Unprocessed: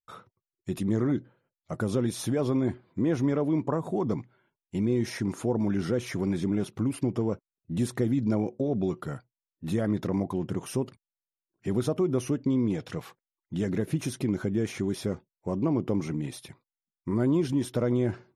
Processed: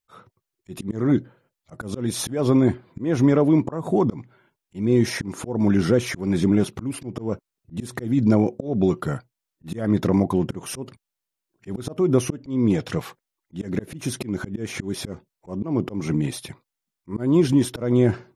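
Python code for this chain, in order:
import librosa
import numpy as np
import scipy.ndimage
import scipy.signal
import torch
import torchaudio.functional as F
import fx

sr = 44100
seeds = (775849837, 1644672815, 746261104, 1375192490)

y = fx.auto_swell(x, sr, attack_ms=224.0)
y = F.gain(torch.from_numpy(y), 9.0).numpy()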